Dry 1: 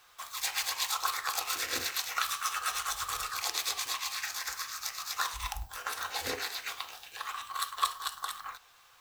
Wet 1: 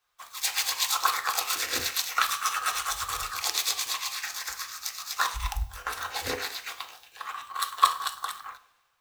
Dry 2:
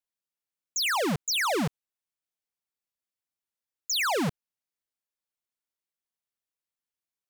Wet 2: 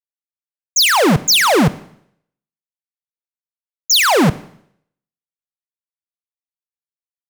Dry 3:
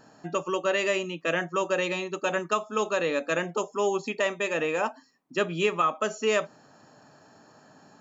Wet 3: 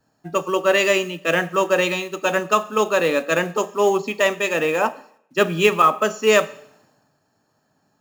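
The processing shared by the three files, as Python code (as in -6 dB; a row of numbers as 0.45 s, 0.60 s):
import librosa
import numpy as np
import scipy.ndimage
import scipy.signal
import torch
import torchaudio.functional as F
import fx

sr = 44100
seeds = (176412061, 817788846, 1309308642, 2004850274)

y = fx.quant_companded(x, sr, bits=6)
y = fx.rev_schroeder(y, sr, rt60_s=1.0, comb_ms=30, drr_db=16.0)
y = fx.band_widen(y, sr, depth_pct=70)
y = y * 10.0 ** (-3 / 20.0) / np.max(np.abs(y))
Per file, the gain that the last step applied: +4.0 dB, +13.5 dB, +7.5 dB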